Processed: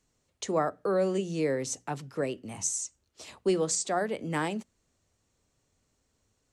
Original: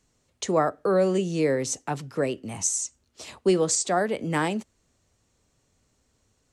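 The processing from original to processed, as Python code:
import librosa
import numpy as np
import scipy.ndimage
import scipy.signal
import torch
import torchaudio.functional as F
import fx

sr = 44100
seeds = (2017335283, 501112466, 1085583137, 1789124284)

y = fx.hum_notches(x, sr, base_hz=60, count=4)
y = y * librosa.db_to_amplitude(-5.0)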